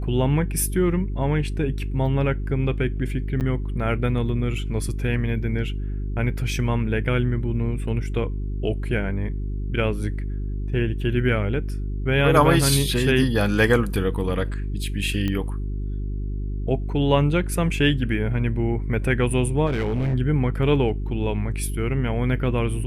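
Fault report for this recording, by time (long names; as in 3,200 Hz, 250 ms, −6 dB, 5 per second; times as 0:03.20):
mains hum 50 Hz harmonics 8 −27 dBFS
0:03.40–0:03.41: drop-out 8.9 ms
0:15.28: click −14 dBFS
0:19.66–0:20.15: clipping −19.5 dBFS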